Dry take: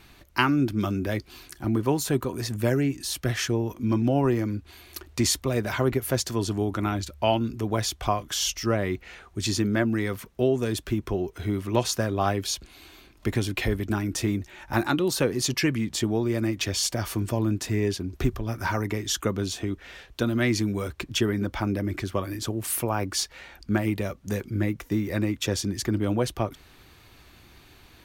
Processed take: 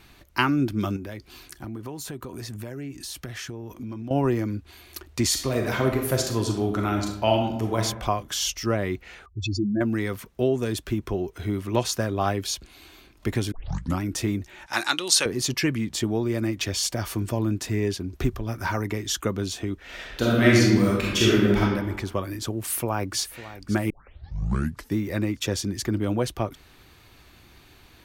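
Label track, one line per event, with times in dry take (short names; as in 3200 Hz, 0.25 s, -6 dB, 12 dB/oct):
0.960000	4.110000	compressor, threshold -32 dBFS
5.270000	7.810000	reverb throw, RT60 0.81 s, DRR 2.5 dB
9.260000	9.810000	spectral contrast raised exponent 3.1
13.520000	13.520000	tape start 0.49 s
14.660000	15.260000	weighting filter ITU-R 468
19.840000	21.600000	reverb throw, RT60 1.2 s, DRR -6.5 dB
22.580000	23.190000	echo throw 0.55 s, feedback 45%, level -15 dB
23.900000	23.900000	tape start 1.05 s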